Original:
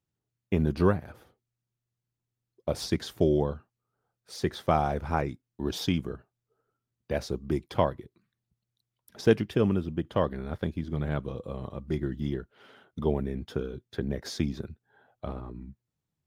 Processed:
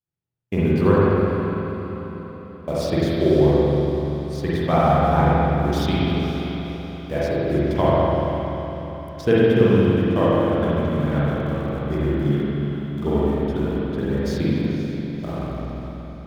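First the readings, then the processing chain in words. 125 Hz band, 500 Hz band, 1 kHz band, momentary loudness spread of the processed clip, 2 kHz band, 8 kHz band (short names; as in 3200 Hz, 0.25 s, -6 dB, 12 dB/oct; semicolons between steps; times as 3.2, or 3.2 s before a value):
+11.0 dB, +10.5 dB, +10.0 dB, 13 LU, +10.0 dB, n/a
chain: spectral noise reduction 8 dB; in parallel at -4 dB: sample gate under -35.5 dBFS; on the sum: diffused feedback echo 0.532 s, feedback 50%, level -12 dB; spring tank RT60 3 s, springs 42/48 ms, chirp 40 ms, DRR -8.5 dB; gain -3.5 dB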